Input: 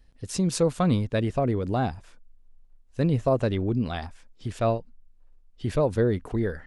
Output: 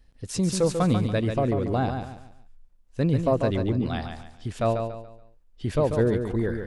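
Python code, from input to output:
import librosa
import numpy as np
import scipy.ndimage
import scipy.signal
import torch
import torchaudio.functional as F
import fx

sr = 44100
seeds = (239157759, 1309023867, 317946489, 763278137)

y = fx.echo_feedback(x, sr, ms=142, feedback_pct=33, wet_db=-6.5)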